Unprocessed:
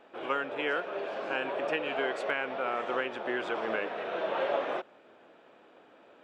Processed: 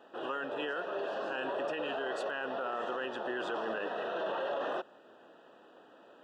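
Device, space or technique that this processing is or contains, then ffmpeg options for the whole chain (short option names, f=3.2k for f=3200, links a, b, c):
PA system with an anti-feedback notch: -af "highpass=110,asuperstop=centerf=2200:order=8:qfactor=3.6,alimiter=level_in=3.5dB:limit=-24dB:level=0:latency=1:release=11,volume=-3.5dB"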